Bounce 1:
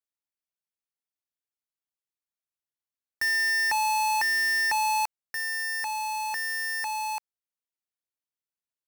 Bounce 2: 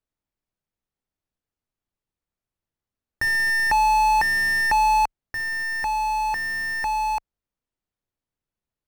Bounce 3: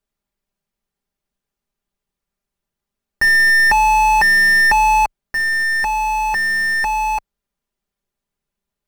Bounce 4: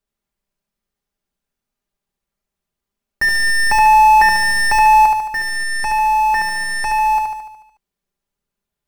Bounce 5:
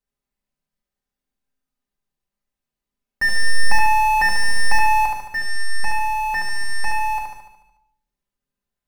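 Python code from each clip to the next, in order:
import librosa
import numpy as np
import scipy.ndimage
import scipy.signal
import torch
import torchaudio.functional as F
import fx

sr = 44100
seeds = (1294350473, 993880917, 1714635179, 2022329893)

y1 = fx.tilt_eq(x, sr, slope=-3.5)
y1 = y1 * 10.0 ** (7.0 / 20.0)
y2 = y1 + 0.64 * np.pad(y1, (int(5.0 * sr / 1000.0), 0))[:len(y1)]
y2 = y2 * 10.0 ** (5.0 / 20.0)
y3 = fx.echo_feedback(y2, sr, ms=73, feedback_pct=58, wet_db=-4)
y3 = y3 * 10.0 ** (-1.5 / 20.0)
y4 = fx.room_shoebox(y3, sr, seeds[0], volume_m3=870.0, walls='furnished', distance_m=2.0)
y4 = y4 * 10.0 ** (-6.5 / 20.0)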